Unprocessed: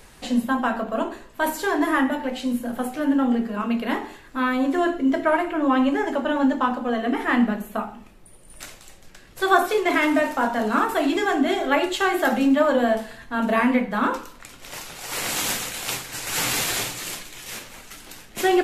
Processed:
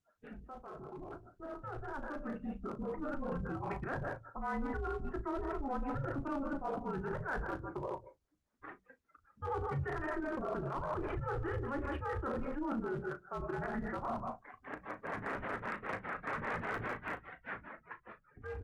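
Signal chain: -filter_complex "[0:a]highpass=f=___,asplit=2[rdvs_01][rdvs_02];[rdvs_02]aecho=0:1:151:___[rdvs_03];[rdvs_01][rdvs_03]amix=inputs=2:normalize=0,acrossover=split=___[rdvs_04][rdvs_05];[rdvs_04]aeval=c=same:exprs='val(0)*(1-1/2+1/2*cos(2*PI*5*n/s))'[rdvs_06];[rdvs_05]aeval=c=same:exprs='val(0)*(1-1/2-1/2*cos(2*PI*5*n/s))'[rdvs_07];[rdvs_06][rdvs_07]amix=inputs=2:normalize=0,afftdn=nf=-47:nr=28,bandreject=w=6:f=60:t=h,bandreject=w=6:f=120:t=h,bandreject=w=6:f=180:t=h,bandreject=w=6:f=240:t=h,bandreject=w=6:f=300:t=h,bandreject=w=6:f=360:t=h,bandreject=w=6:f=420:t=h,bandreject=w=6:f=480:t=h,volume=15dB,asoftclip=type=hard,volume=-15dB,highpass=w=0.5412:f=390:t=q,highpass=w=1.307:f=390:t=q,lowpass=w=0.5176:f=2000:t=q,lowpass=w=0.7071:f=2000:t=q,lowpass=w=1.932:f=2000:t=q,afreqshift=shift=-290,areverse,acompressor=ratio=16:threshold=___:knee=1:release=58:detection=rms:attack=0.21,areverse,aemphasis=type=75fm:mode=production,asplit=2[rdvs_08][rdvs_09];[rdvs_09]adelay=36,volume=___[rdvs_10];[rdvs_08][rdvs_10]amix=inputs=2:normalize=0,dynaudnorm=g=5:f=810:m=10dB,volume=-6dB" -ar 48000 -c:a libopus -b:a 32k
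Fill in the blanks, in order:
200, 0.237, 400, -35dB, -12dB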